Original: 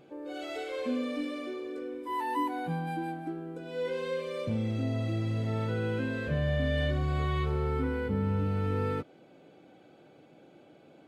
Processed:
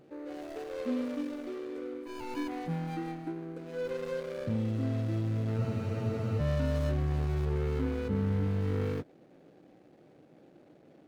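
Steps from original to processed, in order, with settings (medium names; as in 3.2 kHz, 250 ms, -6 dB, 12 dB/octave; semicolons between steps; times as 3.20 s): median filter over 41 samples; spectral freeze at 5.60 s, 0.80 s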